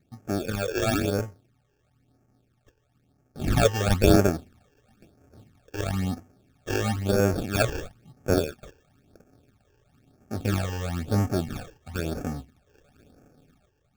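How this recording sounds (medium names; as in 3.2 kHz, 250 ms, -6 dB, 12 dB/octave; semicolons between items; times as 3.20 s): aliases and images of a low sample rate 1 kHz, jitter 0%; phasing stages 12, 1 Hz, lowest notch 210–3800 Hz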